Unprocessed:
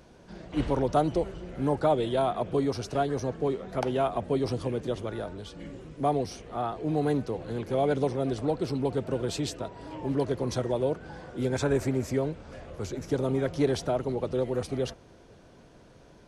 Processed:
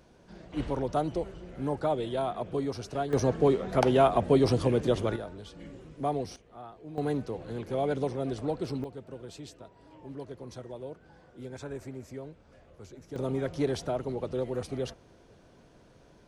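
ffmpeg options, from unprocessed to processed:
-af "asetnsamples=n=441:p=0,asendcmd='3.13 volume volume 5dB;5.16 volume volume -4dB;6.36 volume volume -14.5dB;6.98 volume volume -3.5dB;8.84 volume volume -13.5dB;13.16 volume volume -3.5dB',volume=-4.5dB"

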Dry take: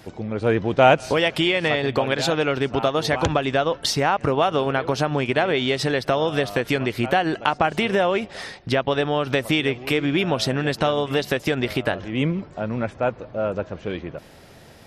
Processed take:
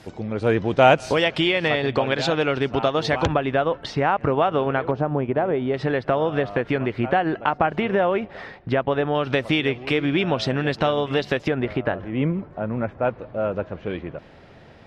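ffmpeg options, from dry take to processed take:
-af "asetnsamples=n=441:p=0,asendcmd='1.24 lowpass f 5000;3.27 lowpass f 2300;4.91 lowpass f 1000;5.74 lowpass f 2000;9.15 lowpass f 4100;11.48 lowpass f 1800;13.05 lowpass f 3000',lowpass=10k"

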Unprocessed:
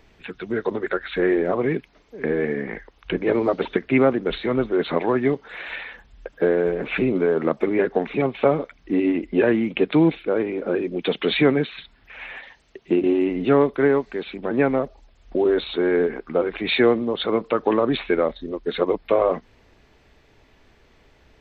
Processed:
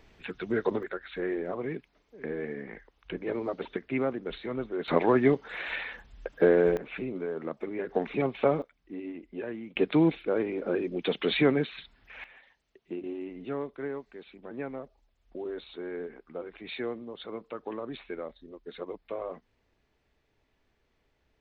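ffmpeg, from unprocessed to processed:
-af "asetnsamples=n=441:p=0,asendcmd='0.83 volume volume -12dB;4.88 volume volume -2dB;6.77 volume volume -14dB;7.89 volume volume -6.5dB;8.62 volume volume -18.5dB;9.76 volume volume -6dB;12.24 volume volume -17.5dB',volume=-3.5dB"

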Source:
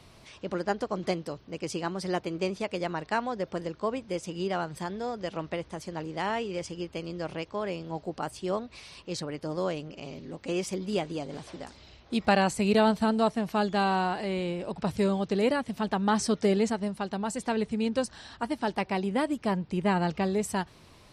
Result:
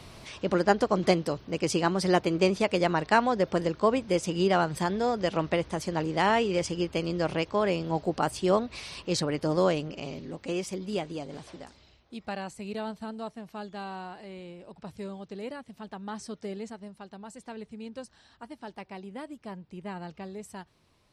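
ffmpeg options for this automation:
-af "volume=6.5dB,afade=t=out:st=9.58:d=1.05:silence=0.375837,afade=t=out:st=11.46:d=0.68:silence=0.298538"

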